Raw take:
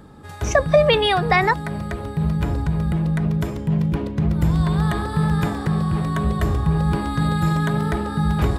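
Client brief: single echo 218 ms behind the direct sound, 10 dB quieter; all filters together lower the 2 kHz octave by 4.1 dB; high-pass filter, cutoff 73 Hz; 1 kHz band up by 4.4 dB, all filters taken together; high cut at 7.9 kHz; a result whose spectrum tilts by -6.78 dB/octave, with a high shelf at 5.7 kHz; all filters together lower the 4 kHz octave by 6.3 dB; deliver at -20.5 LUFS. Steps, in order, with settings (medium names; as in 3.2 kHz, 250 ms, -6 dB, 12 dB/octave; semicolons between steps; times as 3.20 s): high-pass 73 Hz; low-pass 7.9 kHz; peaking EQ 1 kHz +7.5 dB; peaking EQ 2 kHz -6 dB; peaking EQ 4 kHz -5 dB; treble shelf 5.7 kHz -3.5 dB; delay 218 ms -10 dB; trim -0.5 dB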